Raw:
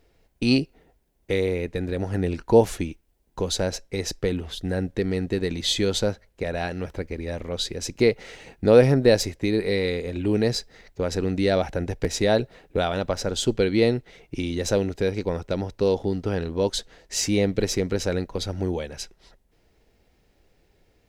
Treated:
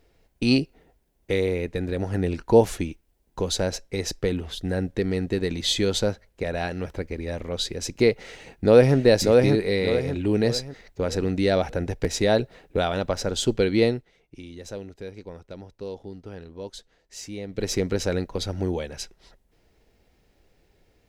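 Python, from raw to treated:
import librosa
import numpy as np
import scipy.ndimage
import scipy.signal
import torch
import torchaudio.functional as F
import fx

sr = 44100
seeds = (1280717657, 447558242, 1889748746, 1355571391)

y = fx.echo_throw(x, sr, start_s=8.29, length_s=0.67, ms=590, feedback_pct=40, wet_db=-3.0)
y = fx.edit(y, sr, fx.fade_down_up(start_s=13.83, length_s=3.92, db=-13.5, fade_s=0.27), tone=tone)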